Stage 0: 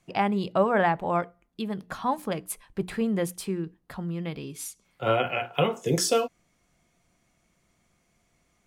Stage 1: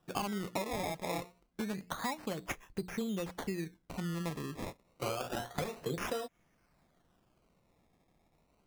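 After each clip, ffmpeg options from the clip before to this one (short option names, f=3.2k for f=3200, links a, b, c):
-af "acompressor=threshold=-30dB:ratio=16,acrusher=samples=20:mix=1:aa=0.000001:lfo=1:lforange=20:lforate=0.28,volume=-2.5dB"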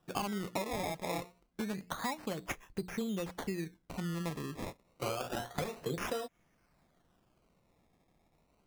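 -af anull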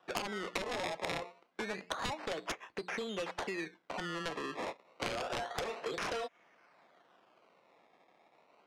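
-filter_complex "[0:a]highpass=520,lowpass=3.3k,aeval=exprs='0.1*(cos(1*acos(clip(val(0)/0.1,-1,1)))-cos(1*PI/2))+0.0398*(cos(7*acos(clip(val(0)/0.1,-1,1)))-cos(7*PI/2))':c=same,acrossover=split=750|2200[a][b][c];[a]acompressor=threshold=-44dB:ratio=4[d];[b]acompressor=threshold=-49dB:ratio=4[e];[c]acompressor=threshold=-46dB:ratio=4[f];[d][e][f]amix=inputs=3:normalize=0,volume=6dB"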